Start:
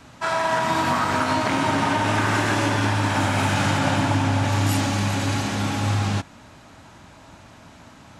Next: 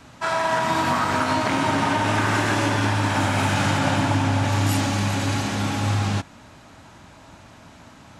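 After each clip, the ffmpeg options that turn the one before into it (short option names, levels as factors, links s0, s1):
-af anull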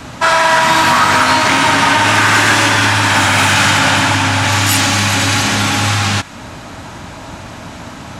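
-filter_complex "[0:a]acrossover=split=1100[s0][s1];[s0]acompressor=threshold=0.0224:ratio=4[s2];[s2][s1]amix=inputs=2:normalize=0,aeval=exprs='0.266*sin(PI/2*1.78*val(0)/0.266)':c=same,volume=2.37"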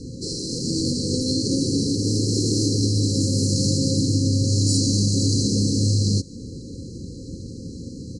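-af "afftfilt=real='re*(1-between(b*sr/4096,540,4000))':imag='im*(1-between(b*sr/4096,540,4000))':win_size=4096:overlap=0.75,highshelf=f=6300:g=-11,aresample=22050,aresample=44100,volume=0.794"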